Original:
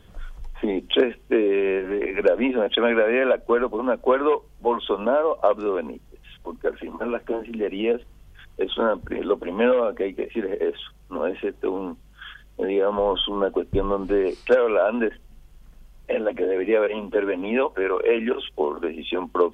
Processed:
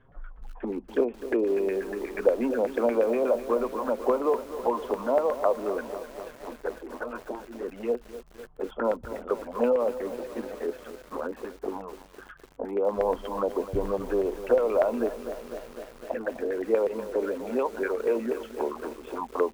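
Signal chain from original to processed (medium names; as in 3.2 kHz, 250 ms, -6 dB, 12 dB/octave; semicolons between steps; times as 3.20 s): touch-sensitive flanger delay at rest 8.1 ms, full sweep at -17.5 dBFS; LFO low-pass saw down 8.3 Hz 680–1800 Hz; bit-crushed delay 252 ms, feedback 80%, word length 6-bit, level -12.5 dB; trim -5.5 dB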